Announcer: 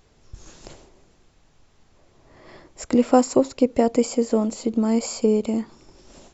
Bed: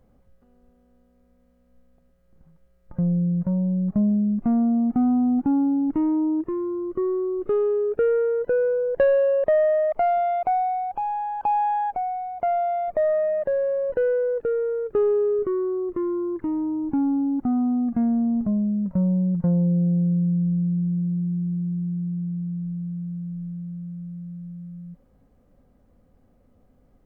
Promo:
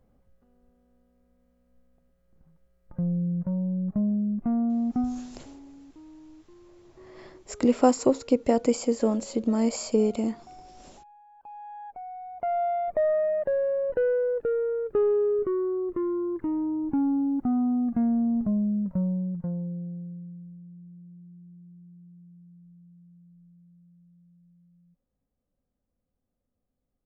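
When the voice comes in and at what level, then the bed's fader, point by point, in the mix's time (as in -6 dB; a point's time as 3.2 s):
4.70 s, -3.5 dB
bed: 5 s -5 dB
5.37 s -27 dB
11.25 s -27 dB
12.63 s -2.5 dB
18.78 s -2.5 dB
20.6 s -23 dB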